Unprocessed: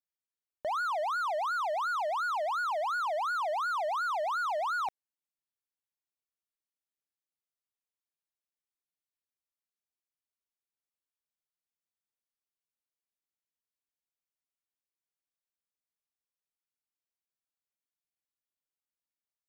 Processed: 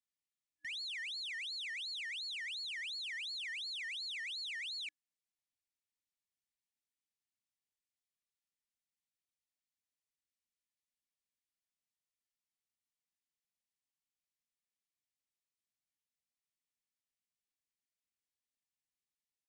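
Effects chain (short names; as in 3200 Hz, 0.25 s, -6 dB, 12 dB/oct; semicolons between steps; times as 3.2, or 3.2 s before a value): wavefolder -35 dBFS; FFT band-reject 310–1700 Hz; downsampling 22050 Hz; gain -1.5 dB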